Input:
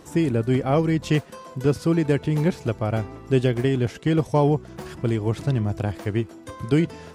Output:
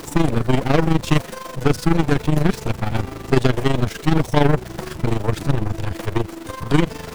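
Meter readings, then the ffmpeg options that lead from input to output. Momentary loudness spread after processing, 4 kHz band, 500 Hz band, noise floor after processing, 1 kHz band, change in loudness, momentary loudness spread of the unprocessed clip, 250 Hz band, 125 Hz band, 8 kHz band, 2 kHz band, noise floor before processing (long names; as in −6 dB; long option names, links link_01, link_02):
8 LU, +7.0 dB, +1.0 dB, −36 dBFS, +6.0 dB, +2.5 dB, 7 LU, +2.5 dB, +2.5 dB, +8.0 dB, +6.5 dB, −44 dBFS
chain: -af "aeval=exprs='val(0)+0.5*0.0251*sgn(val(0))':channel_layout=same,aeval=exprs='0.473*(cos(1*acos(clip(val(0)/0.473,-1,1)))-cos(1*PI/2))+0.0944*(cos(8*acos(clip(val(0)/0.473,-1,1)))-cos(8*PI/2))':channel_layout=same,tremolo=f=24:d=0.71,volume=4dB"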